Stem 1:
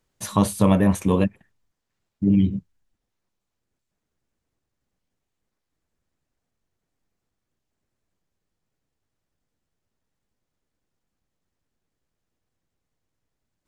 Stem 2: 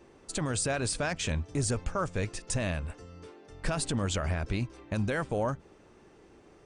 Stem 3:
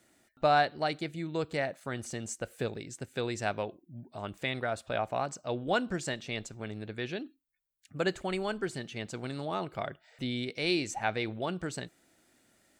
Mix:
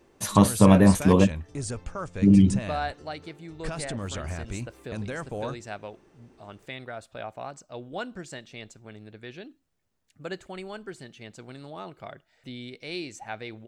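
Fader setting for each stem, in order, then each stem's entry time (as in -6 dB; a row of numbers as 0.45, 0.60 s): +1.5, -3.5, -5.5 dB; 0.00, 0.00, 2.25 s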